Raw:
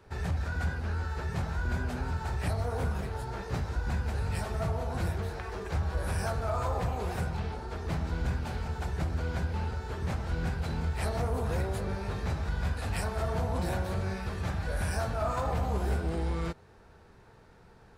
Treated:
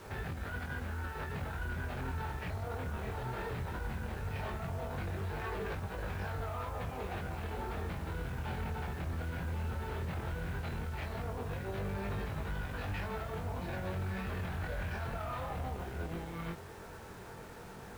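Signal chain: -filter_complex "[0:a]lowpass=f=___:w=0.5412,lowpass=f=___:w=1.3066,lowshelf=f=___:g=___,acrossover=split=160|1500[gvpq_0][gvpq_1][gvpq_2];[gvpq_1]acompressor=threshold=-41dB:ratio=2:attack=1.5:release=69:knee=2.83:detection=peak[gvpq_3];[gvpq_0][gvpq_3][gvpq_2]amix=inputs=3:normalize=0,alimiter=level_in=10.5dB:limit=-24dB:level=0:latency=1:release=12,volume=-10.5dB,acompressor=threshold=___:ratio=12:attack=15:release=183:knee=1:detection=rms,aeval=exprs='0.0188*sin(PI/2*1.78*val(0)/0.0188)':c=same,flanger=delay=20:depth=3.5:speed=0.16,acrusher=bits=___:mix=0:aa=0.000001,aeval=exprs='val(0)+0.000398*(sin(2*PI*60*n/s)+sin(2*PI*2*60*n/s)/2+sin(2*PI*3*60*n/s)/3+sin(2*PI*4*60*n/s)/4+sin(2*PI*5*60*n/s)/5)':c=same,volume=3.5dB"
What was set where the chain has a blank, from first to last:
3.4k, 3.4k, 68, -9, -42dB, 9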